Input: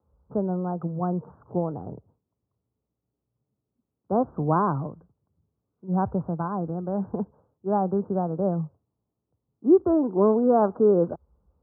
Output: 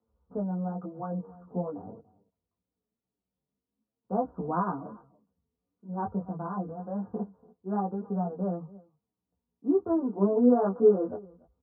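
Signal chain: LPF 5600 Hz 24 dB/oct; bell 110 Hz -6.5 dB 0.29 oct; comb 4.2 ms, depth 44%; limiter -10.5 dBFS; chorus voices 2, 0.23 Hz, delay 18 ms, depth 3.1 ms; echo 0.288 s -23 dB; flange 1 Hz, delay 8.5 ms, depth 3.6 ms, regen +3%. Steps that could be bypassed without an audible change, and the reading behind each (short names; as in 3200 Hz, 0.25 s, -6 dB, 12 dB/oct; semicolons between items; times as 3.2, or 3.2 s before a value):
LPF 5600 Hz: input band ends at 1400 Hz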